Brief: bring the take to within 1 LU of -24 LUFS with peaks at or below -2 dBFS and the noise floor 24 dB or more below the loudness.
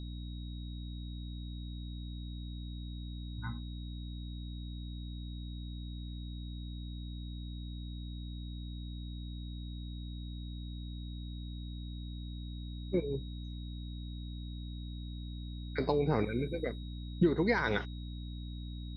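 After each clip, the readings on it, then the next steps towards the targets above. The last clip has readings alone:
hum 60 Hz; harmonics up to 300 Hz; hum level -39 dBFS; steady tone 3800 Hz; tone level -54 dBFS; loudness -39.5 LUFS; peak -14.5 dBFS; loudness target -24.0 LUFS
-> de-hum 60 Hz, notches 5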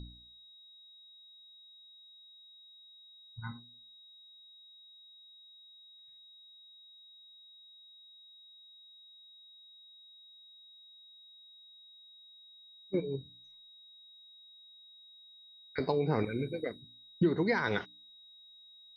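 hum none; steady tone 3800 Hz; tone level -54 dBFS
-> notch 3800 Hz, Q 30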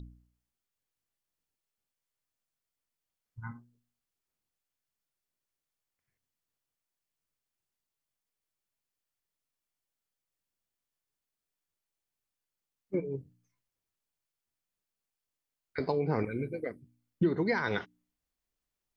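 steady tone none; loudness -33.0 LUFS; peak -15.5 dBFS; loudness target -24.0 LUFS
-> gain +9 dB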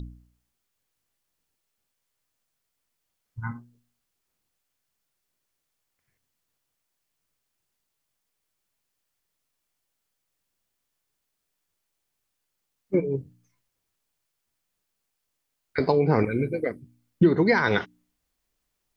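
loudness -24.0 LUFS; peak -6.5 dBFS; noise floor -80 dBFS

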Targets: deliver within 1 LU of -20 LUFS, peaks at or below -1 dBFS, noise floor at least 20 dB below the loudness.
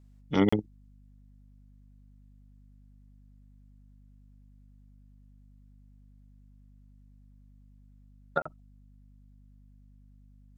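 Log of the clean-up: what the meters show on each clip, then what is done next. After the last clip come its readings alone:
dropouts 2; longest dropout 35 ms; hum 50 Hz; harmonics up to 250 Hz; hum level -53 dBFS; loudness -30.0 LUFS; peak -10.0 dBFS; loudness target -20.0 LUFS
-> interpolate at 0.49/8.42, 35 ms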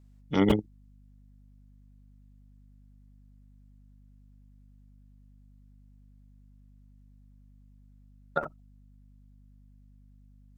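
dropouts 0; hum 50 Hz; harmonics up to 250 Hz; hum level -53 dBFS
-> de-hum 50 Hz, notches 5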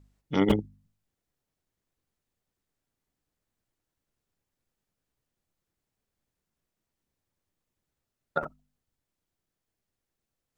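hum none; loudness -29.0 LUFS; peak -8.0 dBFS; loudness target -20.0 LUFS
-> gain +9 dB; limiter -1 dBFS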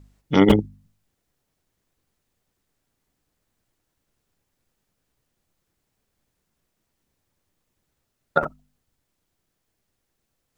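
loudness -20.5 LUFS; peak -1.0 dBFS; noise floor -77 dBFS

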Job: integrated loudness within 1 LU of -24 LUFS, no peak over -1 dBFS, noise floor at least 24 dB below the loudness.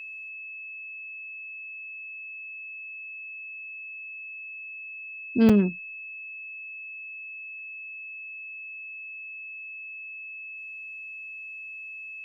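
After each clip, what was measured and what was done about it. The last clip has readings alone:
dropouts 1; longest dropout 5.3 ms; steady tone 2600 Hz; tone level -37 dBFS; loudness -32.5 LUFS; peak -10.0 dBFS; loudness target -24.0 LUFS
-> interpolate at 5.49, 5.3 ms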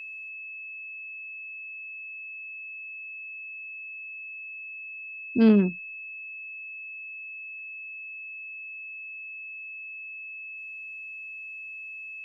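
dropouts 0; steady tone 2600 Hz; tone level -37 dBFS
-> notch 2600 Hz, Q 30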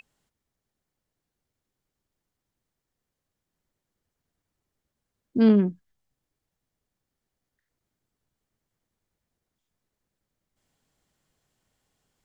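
steady tone none; loudness -21.5 LUFS; peak -9.5 dBFS; loudness target -24.0 LUFS
-> gain -2.5 dB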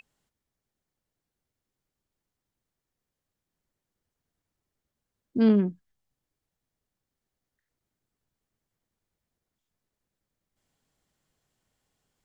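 loudness -24.0 LUFS; peak -12.0 dBFS; noise floor -87 dBFS

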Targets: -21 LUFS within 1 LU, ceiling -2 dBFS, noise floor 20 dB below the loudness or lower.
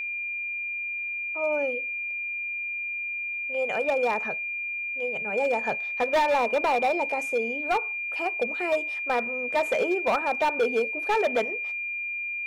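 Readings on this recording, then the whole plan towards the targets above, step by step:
clipped 1.3%; flat tops at -18.5 dBFS; steady tone 2400 Hz; tone level -29 dBFS; loudness -26.5 LUFS; peak -18.5 dBFS; loudness target -21.0 LUFS
-> clip repair -18.5 dBFS; notch 2400 Hz, Q 30; gain +5.5 dB

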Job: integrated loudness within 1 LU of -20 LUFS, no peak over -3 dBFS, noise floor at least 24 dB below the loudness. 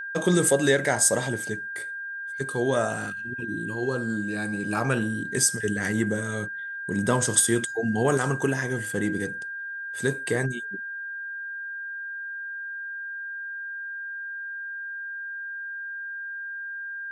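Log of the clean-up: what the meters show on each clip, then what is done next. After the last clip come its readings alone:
steady tone 1600 Hz; tone level -32 dBFS; loudness -27.0 LUFS; peak -4.0 dBFS; loudness target -20.0 LUFS
-> notch 1600 Hz, Q 30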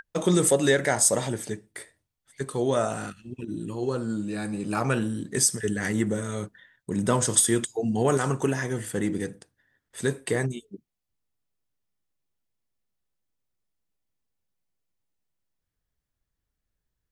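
steady tone none; loudness -25.5 LUFS; peak -4.0 dBFS; loudness target -20.0 LUFS
-> gain +5.5 dB; limiter -3 dBFS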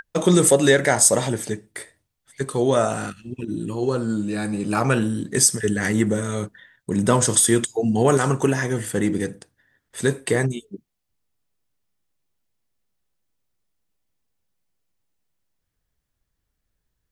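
loudness -20.5 LUFS; peak -3.0 dBFS; noise floor -78 dBFS

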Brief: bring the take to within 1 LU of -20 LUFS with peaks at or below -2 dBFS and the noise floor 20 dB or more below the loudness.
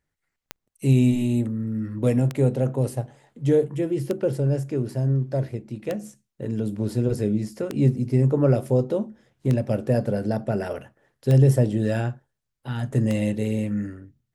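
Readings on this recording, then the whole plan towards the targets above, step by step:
clicks 8; loudness -24.0 LUFS; peak -7.0 dBFS; loudness target -20.0 LUFS
-> de-click; gain +4 dB

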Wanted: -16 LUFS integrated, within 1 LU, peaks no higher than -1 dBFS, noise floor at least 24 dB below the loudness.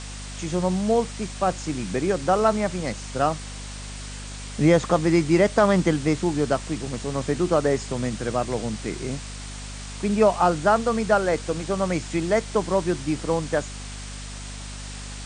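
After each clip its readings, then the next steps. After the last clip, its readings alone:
hum 50 Hz; harmonics up to 250 Hz; hum level -35 dBFS; noise floor -36 dBFS; noise floor target -48 dBFS; loudness -23.5 LUFS; peak -5.0 dBFS; loudness target -16.0 LUFS
-> de-hum 50 Hz, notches 5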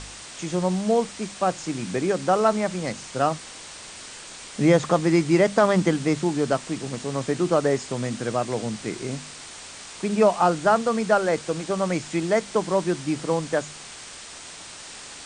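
hum none; noise floor -41 dBFS; noise floor target -48 dBFS
-> denoiser 7 dB, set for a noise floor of -41 dBFS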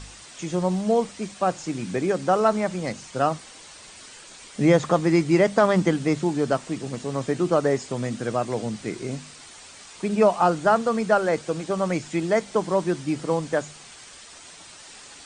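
noise floor -45 dBFS; noise floor target -48 dBFS
-> denoiser 6 dB, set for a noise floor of -45 dBFS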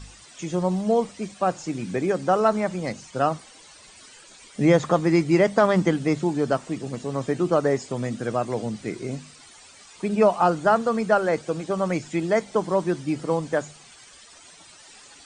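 noise floor -49 dBFS; loudness -23.5 LUFS; peak -5.5 dBFS; loudness target -16.0 LUFS
-> gain +7.5 dB; limiter -1 dBFS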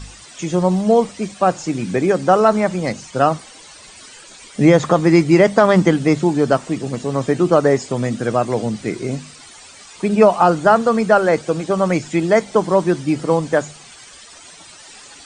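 loudness -16.5 LUFS; peak -1.0 dBFS; noise floor -42 dBFS

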